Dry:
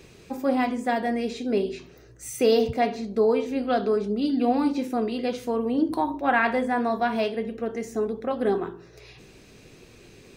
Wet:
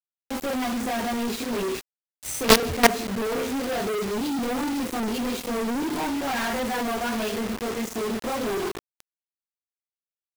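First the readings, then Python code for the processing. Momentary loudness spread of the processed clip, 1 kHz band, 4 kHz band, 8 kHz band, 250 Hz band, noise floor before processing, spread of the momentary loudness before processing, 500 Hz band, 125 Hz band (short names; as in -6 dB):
9 LU, -1.0 dB, +8.5 dB, +11.5 dB, -1.5 dB, -51 dBFS, 8 LU, -3.0 dB, +2.0 dB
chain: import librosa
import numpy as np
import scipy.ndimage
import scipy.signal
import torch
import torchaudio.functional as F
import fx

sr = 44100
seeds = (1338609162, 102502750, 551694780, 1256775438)

y = fx.chorus_voices(x, sr, voices=6, hz=0.73, base_ms=24, depth_ms=3.0, mix_pct=60)
y = fx.quant_companded(y, sr, bits=2)
y = y * librosa.db_to_amplitude(-1.0)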